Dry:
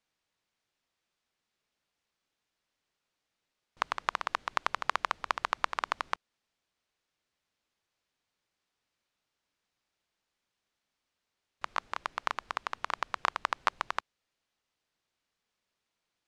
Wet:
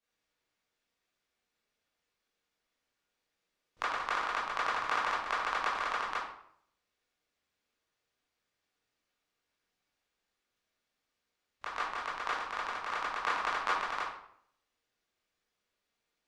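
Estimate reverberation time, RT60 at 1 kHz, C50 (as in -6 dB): 0.65 s, 0.65 s, 3.0 dB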